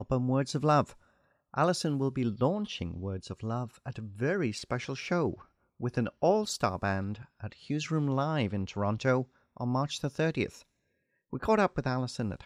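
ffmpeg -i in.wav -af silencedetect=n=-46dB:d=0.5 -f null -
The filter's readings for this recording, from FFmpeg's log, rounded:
silence_start: 0.93
silence_end: 1.54 | silence_duration: 0.61
silence_start: 10.62
silence_end: 11.33 | silence_duration: 0.71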